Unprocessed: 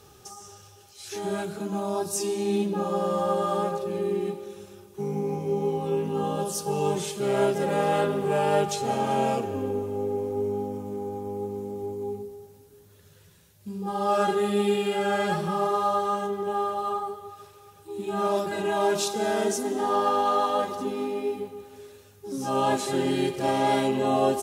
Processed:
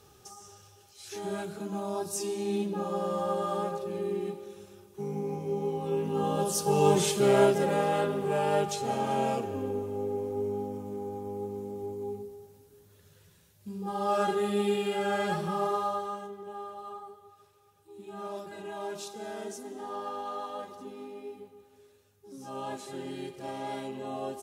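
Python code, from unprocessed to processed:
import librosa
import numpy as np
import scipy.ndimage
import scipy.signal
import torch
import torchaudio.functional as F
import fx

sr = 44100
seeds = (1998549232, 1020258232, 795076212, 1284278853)

y = fx.gain(x, sr, db=fx.line((5.74, -5.0), (7.12, 5.0), (7.91, -4.0), (15.72, -4.0), (16.36, -13.5)))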